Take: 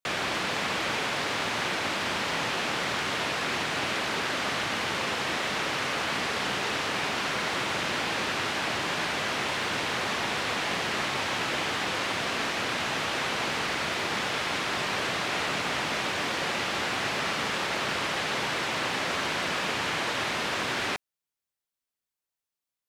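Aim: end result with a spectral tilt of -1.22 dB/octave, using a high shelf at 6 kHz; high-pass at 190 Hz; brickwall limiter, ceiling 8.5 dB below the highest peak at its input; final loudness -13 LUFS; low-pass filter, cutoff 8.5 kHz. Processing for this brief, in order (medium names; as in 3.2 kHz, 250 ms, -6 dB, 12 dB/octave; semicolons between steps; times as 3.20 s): high-pass 190 Hz; low-pass 8.5 kHz; treble shelf 6 kHz +6 dB; trim +18.5 dB; peak limiter -5.5 dBFS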